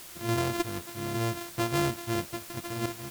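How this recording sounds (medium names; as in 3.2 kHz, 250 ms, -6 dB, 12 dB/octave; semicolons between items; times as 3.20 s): a buzz of ramps at a fixed pitch in blocks of 128 samples; random-step tremolo, depth 70%; a quantiser's noise floor 8-bit, dither triangular; AAC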